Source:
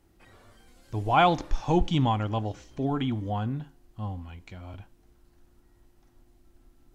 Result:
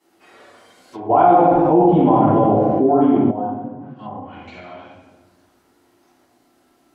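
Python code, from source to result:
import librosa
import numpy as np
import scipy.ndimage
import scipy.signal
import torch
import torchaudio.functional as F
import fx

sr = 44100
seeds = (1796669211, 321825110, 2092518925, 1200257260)

y = scipy.signal.sosfilt(scipy.signal.butter(2, 370.0, 'highpass', fs=sr, output='sos'), x)
y = fx.room_shoebox(y, sr, seeds[0], volume_m3=680.0, walls='mixed', distance_m=9.8)
y = fx.env_lowpass_down(y, sr, base_hz=640.0, full_db=-21.0)
y = fx.env_flatten(y, sr, amount_pct=70, at=(1.09, 3.3), fade=0.02)
y = y * 10.0 ** (-4.5 / 20.0)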